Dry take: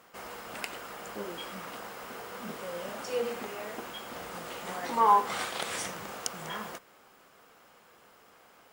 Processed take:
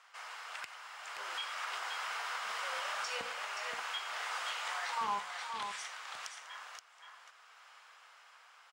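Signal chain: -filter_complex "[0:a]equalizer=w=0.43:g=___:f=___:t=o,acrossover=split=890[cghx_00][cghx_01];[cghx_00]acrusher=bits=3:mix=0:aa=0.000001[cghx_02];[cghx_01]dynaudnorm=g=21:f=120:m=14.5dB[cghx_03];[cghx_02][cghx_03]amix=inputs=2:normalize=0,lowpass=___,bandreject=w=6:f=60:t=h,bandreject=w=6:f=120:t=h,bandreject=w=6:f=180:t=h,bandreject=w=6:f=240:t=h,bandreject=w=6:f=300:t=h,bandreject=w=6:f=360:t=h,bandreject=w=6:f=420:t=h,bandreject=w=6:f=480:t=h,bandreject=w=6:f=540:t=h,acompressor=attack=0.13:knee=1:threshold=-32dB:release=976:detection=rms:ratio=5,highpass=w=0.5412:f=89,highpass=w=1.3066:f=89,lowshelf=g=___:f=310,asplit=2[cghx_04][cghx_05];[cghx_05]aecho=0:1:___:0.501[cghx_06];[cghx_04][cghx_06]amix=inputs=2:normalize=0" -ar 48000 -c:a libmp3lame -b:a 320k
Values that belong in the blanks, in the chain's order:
5.5, 210, 6500, 7.5, 525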